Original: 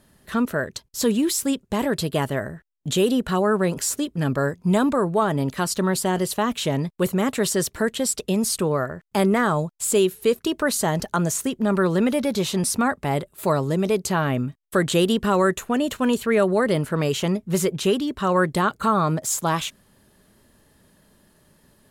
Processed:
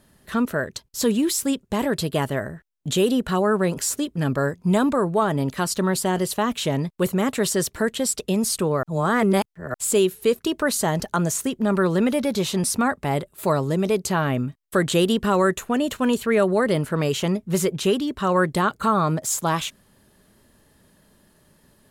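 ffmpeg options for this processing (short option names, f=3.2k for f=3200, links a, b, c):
-filter_complex "[0:a]asplit=3[a][b][c];[a]atrim=end=8.832[d];[b]atrim=start=8.828:end=9.742,asetpts=PTS-STARTPTS,areverse[e];[c]atrim=start=9.738[f];[d][e]acrossfade=d=0.004:c1=hsin:c2=hsin[g];[g][f]acrossfade=d=0.004:c1=hsin:c2=hsin"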